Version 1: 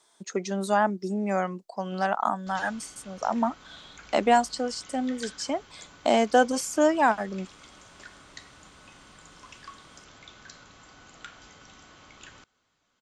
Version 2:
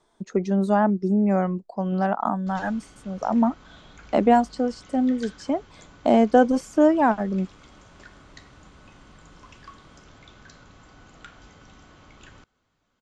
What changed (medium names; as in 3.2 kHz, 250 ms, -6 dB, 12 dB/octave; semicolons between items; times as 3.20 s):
speech: add tilt EQ -4 dB/octave; background: add tilt EQ -2 dB/octave